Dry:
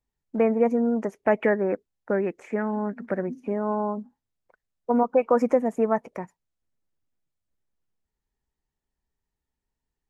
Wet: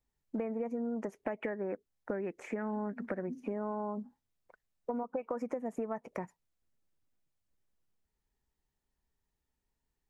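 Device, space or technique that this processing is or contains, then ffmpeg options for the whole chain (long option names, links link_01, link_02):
serial compression, peaks first: -af "acompressor=threshold=-27dB:ratio=6,acompressor=threshold=-37dB:ratio=2"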